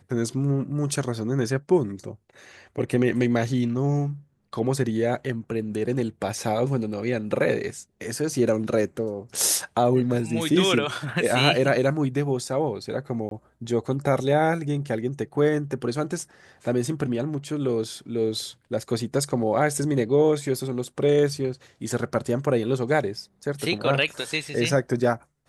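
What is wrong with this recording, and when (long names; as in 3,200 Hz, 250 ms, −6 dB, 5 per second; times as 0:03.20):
0:13.29–0:13.31: drop-out 22 ms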